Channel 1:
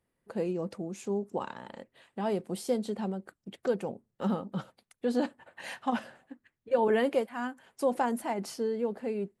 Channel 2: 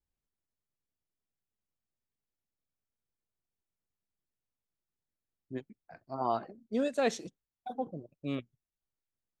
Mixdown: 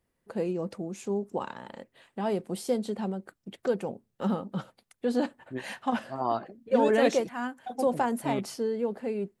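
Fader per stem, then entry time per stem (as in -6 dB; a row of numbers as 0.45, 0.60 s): +1.5, +2.5 dB; 0.00, 0.00 s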